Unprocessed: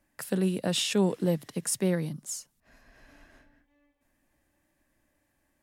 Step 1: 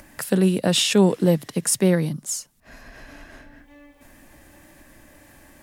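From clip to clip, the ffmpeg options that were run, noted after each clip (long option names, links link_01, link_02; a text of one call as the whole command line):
ffmpeg -i in.wav -af "acompressor=mode=upward:threshold=-44dB:ratio=2.5,volume=8.5dB" out.wav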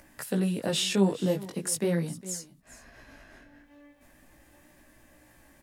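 ffmpeg -i in.wav -af "aecho=1:1:409:0.126,flanger=delay=16:depth=4.9:speed=0.4,volume=-5dB" out.wav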